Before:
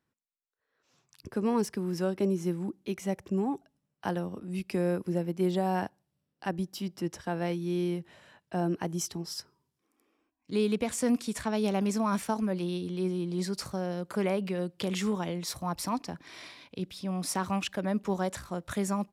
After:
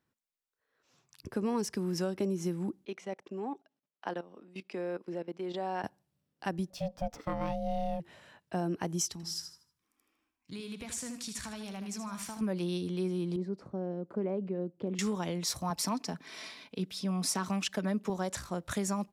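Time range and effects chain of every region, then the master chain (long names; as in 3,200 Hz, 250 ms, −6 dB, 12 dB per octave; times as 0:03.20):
0:02.85–0:05.84: output level in coarse steps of 16 dB + band-pass filter 330–4,700 Hz
0:06.70–0:08.00: spectral tilt −1.5 dB per octave + ring modulation 370 Hz + linearly interpolated sample-rate reduction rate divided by 2×
0:09.12–0:12.41: parametric band 440 Hz −11.5 dB 1.9 octaves + downward compressor 4 to 1, threshold −39 dBFS + repeating echo 78 ms, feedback 38%, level −8 dB
0:13.36–0:14.99: resonant band-pass 310 Hz, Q 1 + one half of a high-frequency compander decoder only
0:15.70–0:18.10: high-pass filter 110 Hz + comb filter 4.6 ms, depth 45%
whole clip: dynamic equaliser 6,100 Hz, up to +6 dB, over −53 dBFS, Q 1.2; downward compressor, threshold −28 dBFS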